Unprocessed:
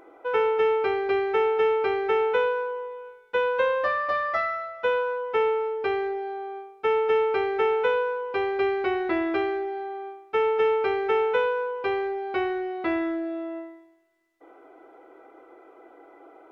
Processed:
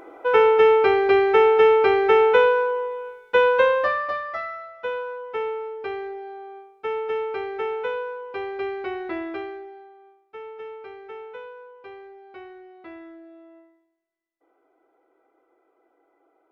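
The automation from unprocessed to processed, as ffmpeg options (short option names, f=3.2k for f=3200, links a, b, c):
-af "volume=7dB,afade=t=out:st=3.47:d=0.77:silence=0.266073,afade=t=out:st=9.16:d=0.79:silence=0.281838"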